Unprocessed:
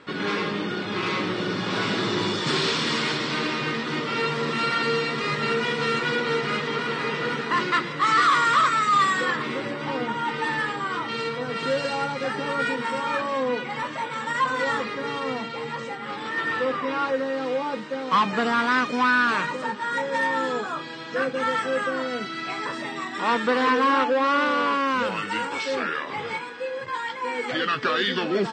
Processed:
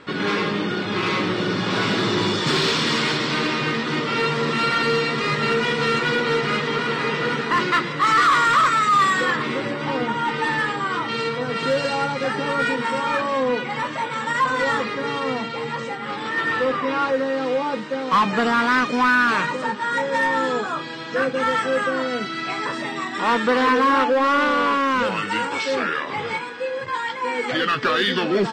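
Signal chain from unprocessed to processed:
in parallel at −5 dB: gain into a clipping stage and back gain 20 dB
on the sum: low-shelf EQ 65 Hz +8 dB

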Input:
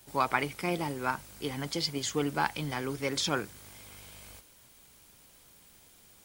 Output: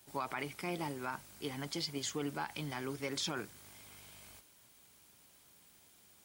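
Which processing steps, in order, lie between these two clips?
brickwall limiter −21.5 dBFS, peak gain reduction 10 dB
high-pass filter 95 Hz 6 dB per octave
notch filter 500 Hz, Q 12
level −5 dB

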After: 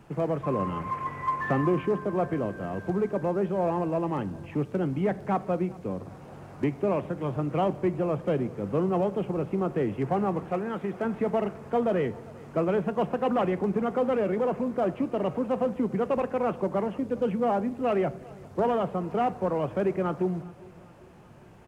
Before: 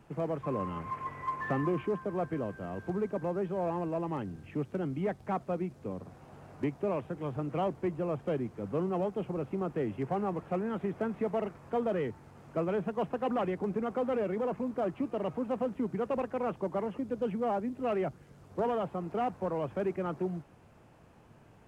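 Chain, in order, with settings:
0:10.51–0:11.05: low-shelf EQ 350 Hz −7 dB
repeating echo 400 ms, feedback 55%, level −23 dB
on a send at −15 dB: convolution reverb RT60 0.90 s, pre-delay 6 ms
on the sum: level +5.5 dB

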